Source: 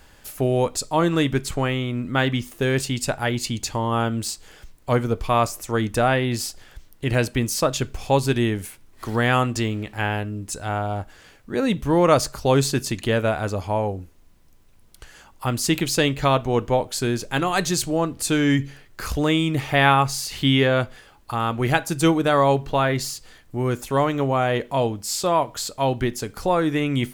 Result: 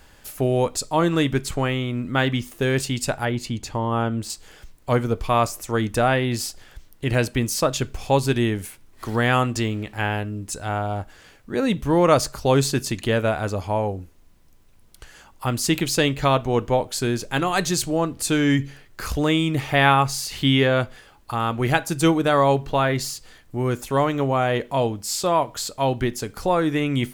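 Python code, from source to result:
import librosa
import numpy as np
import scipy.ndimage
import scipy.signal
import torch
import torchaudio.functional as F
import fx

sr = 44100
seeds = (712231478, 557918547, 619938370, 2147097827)

y = fx.high_shelf(x, sr, hz=2700.0, db=-9.0, at=(3.25, 4.3))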